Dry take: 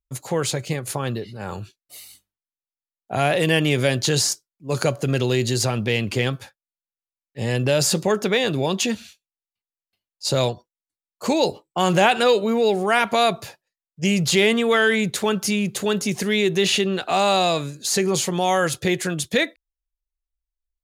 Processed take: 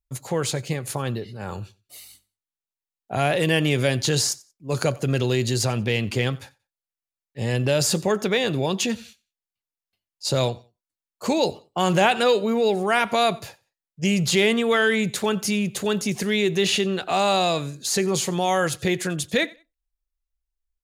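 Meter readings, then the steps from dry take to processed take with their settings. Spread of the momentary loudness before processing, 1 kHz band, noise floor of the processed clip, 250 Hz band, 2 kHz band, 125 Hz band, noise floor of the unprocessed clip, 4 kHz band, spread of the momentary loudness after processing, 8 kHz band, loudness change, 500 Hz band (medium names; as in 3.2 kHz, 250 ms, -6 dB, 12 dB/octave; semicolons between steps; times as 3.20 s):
11 LU, -2.0 dB, under -85 dBFS, -1.5 dB, -2.0 dB, -0.5 dB, under -85 dBFS, -2.0 dB, 11 LU, -2.0 dB, -1.5 dB, -2.0 dB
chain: bass shelf 76 Hz +6 dB; on a send: feedback delay 91 ms, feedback 23%, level -23 dB; on the sum: trim -2 dB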